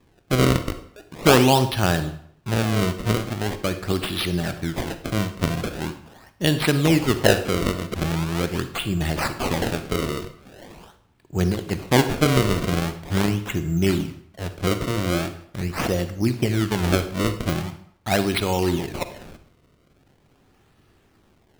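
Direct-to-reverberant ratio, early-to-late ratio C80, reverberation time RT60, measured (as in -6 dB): 10.0 dB, 14.5 dB, 0.65 s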